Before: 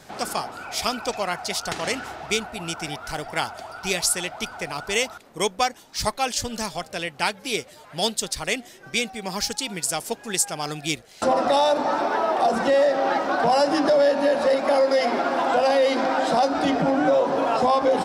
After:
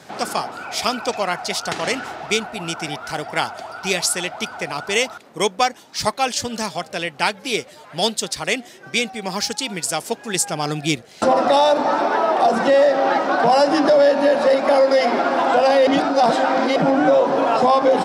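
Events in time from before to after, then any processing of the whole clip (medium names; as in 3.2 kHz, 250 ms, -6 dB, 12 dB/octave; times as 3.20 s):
10.35–11.25 s: bass shelf 360 Hz +6.5 dB
15.87–16.76 s: reverse
whole clip: high-pass 120 Hz 12 dB/octave; treble shelf 9.1 kHz -7.5 dB; trim +4.5 dB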